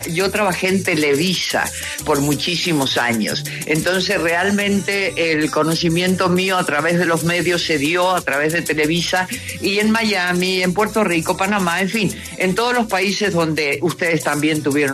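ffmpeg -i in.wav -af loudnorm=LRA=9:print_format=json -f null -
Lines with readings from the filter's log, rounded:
"input_i" : "-17.4",
"input_tp" : "-4.2",
"input_lra" : "1.2",
"input_thresh" : "-27.4",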